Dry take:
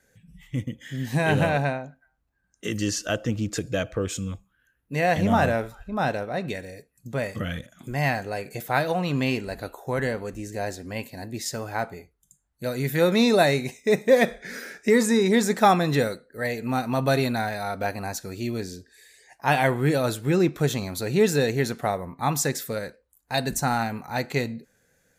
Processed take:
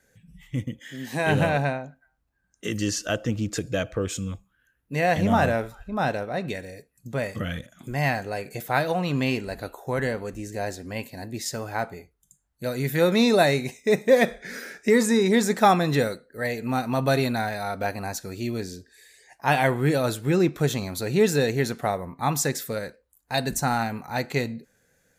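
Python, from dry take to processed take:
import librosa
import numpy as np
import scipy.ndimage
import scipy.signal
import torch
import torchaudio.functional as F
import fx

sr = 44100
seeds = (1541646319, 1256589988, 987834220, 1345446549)

y = fx.highpass(x, sr, hz=250.0, slope=12, at=(0.79, 1.27))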